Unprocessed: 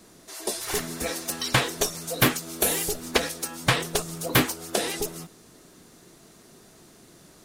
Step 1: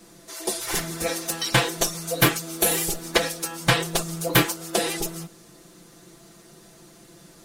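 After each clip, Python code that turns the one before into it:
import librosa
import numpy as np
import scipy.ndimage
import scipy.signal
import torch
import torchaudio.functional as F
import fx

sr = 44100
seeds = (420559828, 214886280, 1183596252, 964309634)

y = x + 0.83 * np.pad(x, (int(5.9 * sr / 1000.0), 0))[:len(x)]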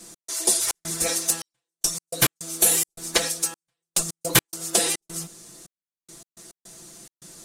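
y = fx.peak_eq(x, sr, hz=8000.0, db=12.5, octaves=1.6)
y = fx.rider(y, sr, range_db=5, speed_s=2.0)
y = fx.step_gate(y, sr, bpm=106, pattern='x.xxx.xxxx...x.', floor_db=-60.0, edge_ms=4.5)
y = y * librosa.db_to_amplitude(-4.0)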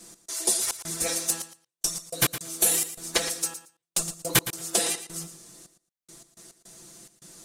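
y = fx.echo_feedback(x, sr, ms=114, feedback_pct=15, wet_db=-12.5)
y = y * librosa.db_to_amplitude(-3.5)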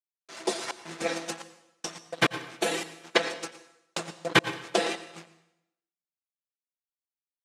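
y = np.sign(x) * np.maximum(np.abs(x) - 10.0 ** (-34.5 / 20.0), 0.0)
y = fx.bandpass_edges(y, sr, low_hz=210.0, high_hz=2700.0)
y = fx.rev_plate(y, sr, seeds[0], rt60_s=0.83, hf_ratio=0.95, predelay_ms=80, drr_db=13.5)
y = y * librosa.db_to_amplitude(7.0)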